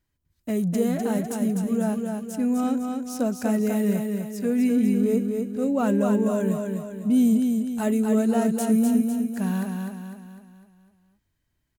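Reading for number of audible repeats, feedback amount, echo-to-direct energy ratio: 5, 47%, -3.5 dB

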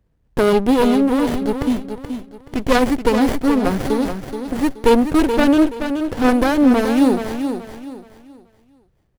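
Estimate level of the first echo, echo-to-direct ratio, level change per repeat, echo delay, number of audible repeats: -8.0 dB, -7.5 dB, -10.5 dB, 427 ms, 3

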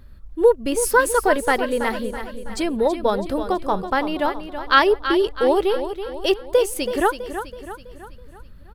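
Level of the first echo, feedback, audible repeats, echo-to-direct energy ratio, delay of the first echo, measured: -10.0 dB, 49%, 5, -9.0 dB, 327 ms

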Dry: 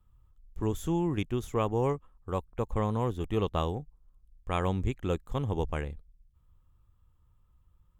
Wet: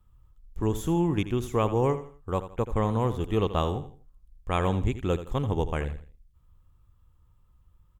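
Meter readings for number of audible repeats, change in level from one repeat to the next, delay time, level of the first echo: 3, -10.0 dB, 82 ms, -12.5 dB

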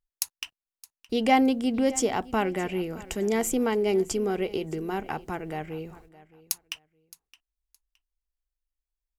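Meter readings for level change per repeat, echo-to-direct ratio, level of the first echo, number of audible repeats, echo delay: -13.0 dB, -20.0 dB, -20.0 dB, 2, 617 ms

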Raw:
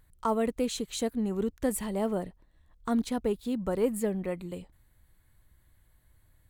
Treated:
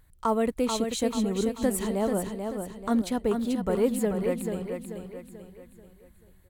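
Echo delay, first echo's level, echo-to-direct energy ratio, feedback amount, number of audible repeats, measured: 437 ms, -6.0 dB, -5.0 dB, 43%, 4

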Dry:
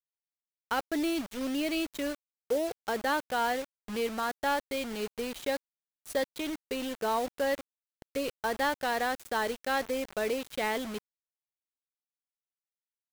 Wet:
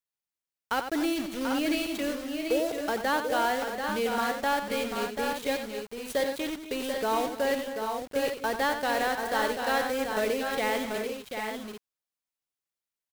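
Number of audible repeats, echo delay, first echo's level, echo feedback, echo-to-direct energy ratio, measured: 4, 91 ms, -9.0 dB, no regular repeats, -2.5 dB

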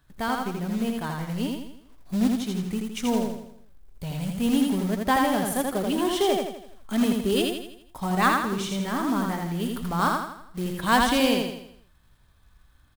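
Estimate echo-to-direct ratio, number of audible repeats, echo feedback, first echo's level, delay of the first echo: -2.0 dB, 5, 46%, -3.0 dB, 82 ms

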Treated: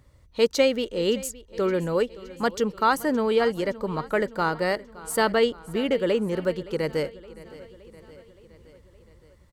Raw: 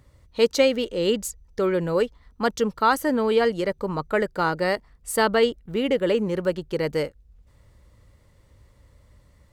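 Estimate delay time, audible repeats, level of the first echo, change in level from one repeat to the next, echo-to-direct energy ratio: 568 ms, 4, -19.0 dB, -4.5 dB, -17.0 dB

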